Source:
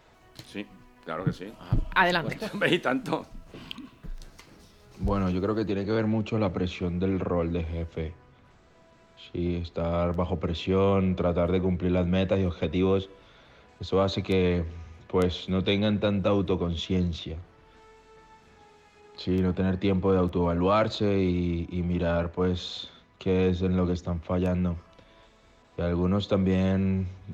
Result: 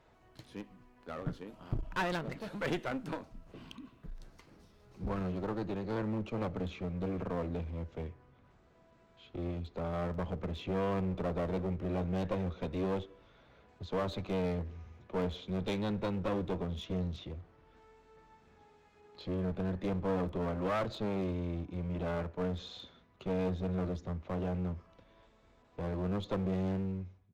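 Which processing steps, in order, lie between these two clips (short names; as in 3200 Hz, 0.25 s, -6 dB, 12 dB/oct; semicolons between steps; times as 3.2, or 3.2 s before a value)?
ending faded out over 0.60 s; high shelf 2100 Hz -7.5 dB; one-sided clip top -34 dBFS, bottom -14.5 dBFS; gain -6 dB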